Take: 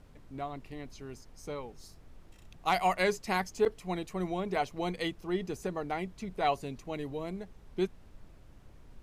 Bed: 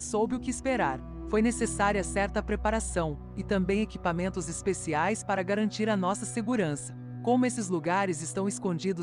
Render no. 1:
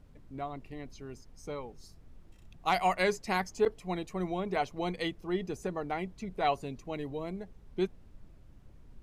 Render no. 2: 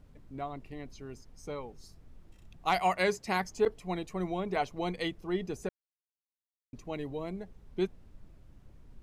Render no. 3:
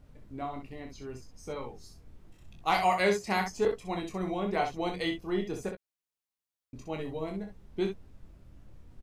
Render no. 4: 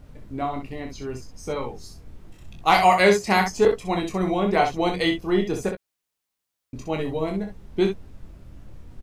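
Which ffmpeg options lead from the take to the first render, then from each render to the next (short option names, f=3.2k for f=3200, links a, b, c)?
-af "afftdn=nr=6:nf=-55"
-filter_complex "[0:a]asettb=1/sr,asplit=3[a][b][c];[a]atrim=end=2.784[d];[b]atrim=start=2.78:end=3.45,asetpts=PTS-STARTPTS,afade=t=in:d=0.004:c=qsin,afade=t=out:st=0.666:d=0.004:c=qsin,highpass=49[e];[c]atrim=start=3.446[f];[d][e]acrossfade=d=0.004:c1=hsin:c2=qsin[g];[g][f]acrossfade=d=0.004:c1=qsin:c2=hsin,asplit=3[h][i][j];[h]atrim=end=5.69,asetpts=PTS-STARTPTS,afade=t=out:st=5.686:d=0.004:c=hsin[k];[i]atrim=start=5.69:end=6.73,asetpts=PTS-STARTPTS,volume=0[l];[j]atrim=start=6.73,asetpts=PTS-STARTPTS,afade=t=in:d=0.004:c=hsin[m];[k][l][m]concat=n=3:v=0:a=1"
-filter_complex "[0:a]asplit=2[a][b];[b]adelay=15,volume=-11dB[c];[a][c]amix=inputs=2:normalize=0,aecho=1:1:25|64:0.531|0.447"
-af "volume=9.5dB"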